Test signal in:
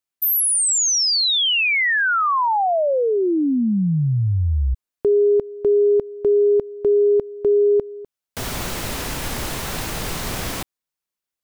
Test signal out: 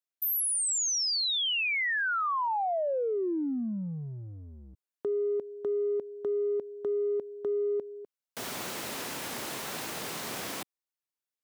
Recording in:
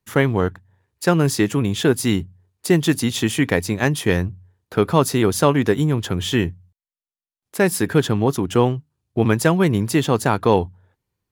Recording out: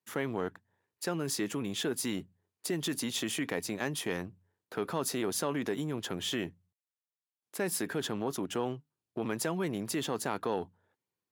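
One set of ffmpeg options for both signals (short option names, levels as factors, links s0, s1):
-af "acompressor=threshold=0.112:ratio=5:attack=2.6:release=21:knee=1:detection=rms,highpass=220,volume=0.376"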